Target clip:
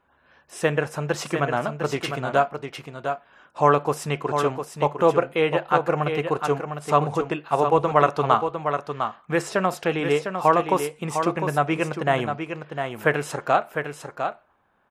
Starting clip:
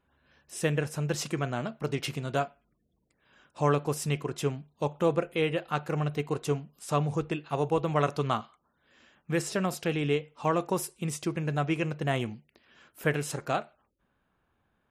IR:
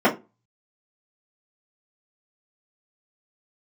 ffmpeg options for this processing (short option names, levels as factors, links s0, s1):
-filter_complex "[0:a]equalizer=f=970:w=0.45:g=12.5,asplit=2[s0][s1];[s1]aecho=0:1:704:0.447[s2];[s0][s2]amix=inputs=2:normalize=0,volume=0.891"